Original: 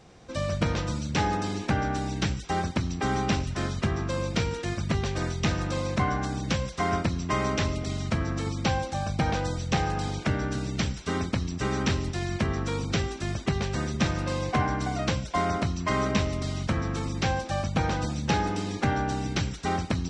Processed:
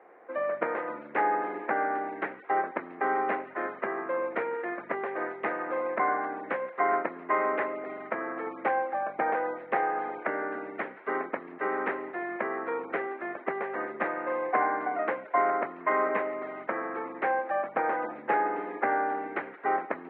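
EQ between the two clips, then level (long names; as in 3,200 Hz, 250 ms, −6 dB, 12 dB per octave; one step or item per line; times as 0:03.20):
high-pass filter 370 Hz 24 dB per octave
elliptic low-pass filter 2,000 Hz, stop band 70 dB
+3.0 dB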